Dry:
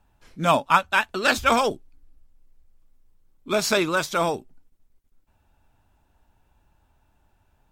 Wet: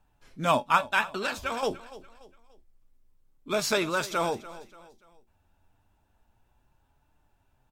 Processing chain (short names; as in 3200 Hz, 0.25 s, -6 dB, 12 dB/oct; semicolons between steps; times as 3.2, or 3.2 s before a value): 1.21–1.63 compressor, threshold -24 dBFS, peak gain reduction 10 dB; flange 0.28 Hz, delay 6.5 ms, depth 4.9 ms, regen +66%; feedback echo 0.29 s, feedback 39%, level -17 dB